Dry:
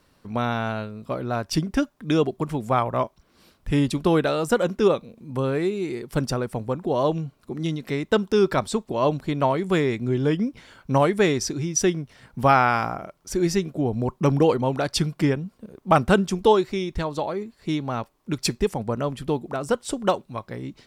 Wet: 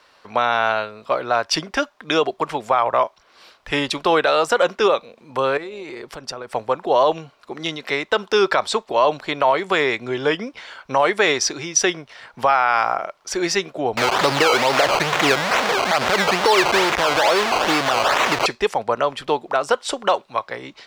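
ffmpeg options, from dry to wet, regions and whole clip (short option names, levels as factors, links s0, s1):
-filter_complex "[0:a]asettb=1/sr,asplit=3[s0][s1][s2];[s0]atrim=end=5.574[s3];[s1]atrim=start=5.57:end=6.51,asetpts=PTS-STARTPTS,afade=t=in:d=0.004:c=qsin,afade=t=out:st=0.936:d=0.004:c=qsin,lowshelf=f=390:g=6,acompressor=threshold=0.0398:ratio=12:attack=3.2:release=140:knee=1:detection=peak,tremolo=f=150:d=0.333[s4];[s2]atrim=start=6.506[s5];[s3][s4]acrossfade=d=0.004:c1=hsin:c2=qsin[s6];[s6][s5]acrossfade=d=0.004:c1=qsin:c2=hsin,asettb=1/sr,asplit=3[s7][s8][s9];[s7]atrim=end=13.974[s10];[s8]atrim=start=13.97:end=18.46,asetpts=PTS-STARTPTS,afade=t=in:d=0.004:c=qsin,afade=t=out:st=4.486:d=0.004:c=qsin,aeval=exprs='val(0)+0.5*0.106*sgn(val(0))':c=same,highpass=60,acrusher=samples=17:mix=1:aa=0.000001:lfo=1:lforange=17:lforate=2.3[s11];[s9]atrim=start=18.456[s12];[s10][s11]acrossfade=d=0.004:c1=hsin:c2=qsin[s13];[s13][s12]acrossfade=d=0.004:c1=qsin:c2=hsin,acrossover=split=510 6100:gain=0.0708 1 0.158[s14][s15][s16];[s14][s15][s16]amix=inputs=3:normalize=0,alimiter=level_in=7.5:limit=0.891:release=50:level=0:latency=1,volume=0.531"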